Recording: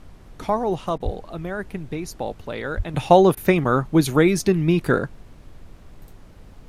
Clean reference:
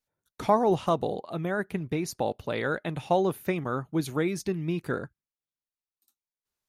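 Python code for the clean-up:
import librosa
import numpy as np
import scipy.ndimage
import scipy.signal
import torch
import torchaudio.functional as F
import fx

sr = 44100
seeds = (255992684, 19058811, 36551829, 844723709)

y = fx.fix_deplosive(x, sr, at_s=(1.04, 2.76))
y = fx.fix_interpolate(y, sr, at_s=(0.98, 3.35), length_ms=20.0)
y = fx.noise_reduce(y, sr, print_start_s=6.07, print_end_s=6.57, reduce_db=30.0)
y = fx.gain(y, sr, db=fx.steps((0.0, 0.0), (2.94, -11.0)))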